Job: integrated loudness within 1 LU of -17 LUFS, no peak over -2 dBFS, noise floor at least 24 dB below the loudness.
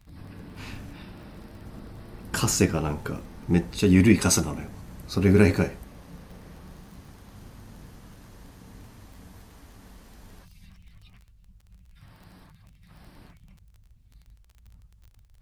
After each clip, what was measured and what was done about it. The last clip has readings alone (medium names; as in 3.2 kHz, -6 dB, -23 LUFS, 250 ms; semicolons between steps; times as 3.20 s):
tick rate 26 per s; loudness -23.0 LUFS; peak level -4.0 dBFS; loudness target -17.0 LUFS
-> de-click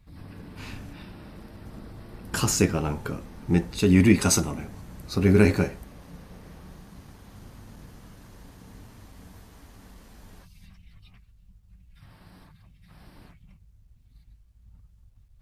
tick rate 0.065 per s; loudness -23.0 LUFS; peak level -4.0 dBFS; loudness target -17.0 LUFS
-> trim +6 dB; peak limiter -2 dBFS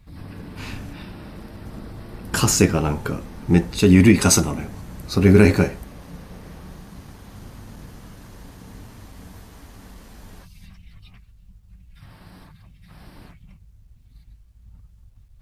loudness -17.5 LUFS; peak level -2.0 dBFS; noise floor -51 dBFS